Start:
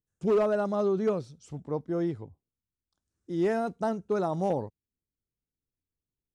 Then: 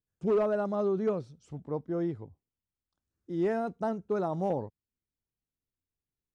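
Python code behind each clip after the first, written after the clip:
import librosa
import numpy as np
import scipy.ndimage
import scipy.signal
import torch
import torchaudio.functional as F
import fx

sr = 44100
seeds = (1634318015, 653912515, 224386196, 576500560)

y = fx.high_shelf(x, sr, hz=3600.0, db=-9.0)
y = y * 10.0 ** (-2.0 / 20.0)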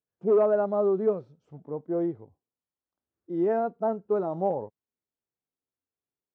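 y = fx.hpss(x, sr, part='percussive', gain_db=-9)
y = fx.bandpass_q(y, sr, hz=600.0, q=0.78)
y = y * 10.0 ** (6.5 / 20.0)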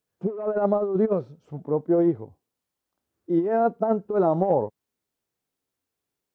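y = fx.over_compress(x, sr, threshold_db=-27.0, ratio=-0.5)
y = y * 10.0 ** (6.5 / 20.0)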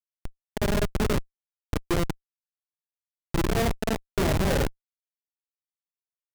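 y = fx.room_flutter(x, sr, wall_m=8.3, rt60_s=0.66)
y = fx.schmitt(y, sr, flips_db=-17.0)
y = y * 10.0 ** (1.5 / 20.0)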